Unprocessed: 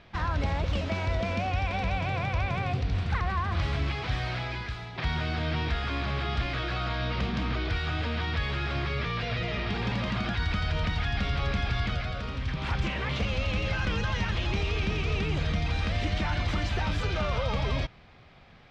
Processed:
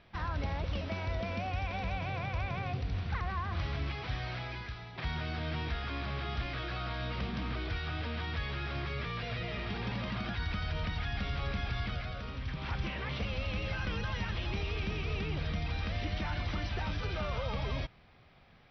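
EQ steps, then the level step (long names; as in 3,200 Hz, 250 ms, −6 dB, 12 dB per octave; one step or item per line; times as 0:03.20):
linear-phase brick-wall low-pass 6,000 Hz
−6.5 dB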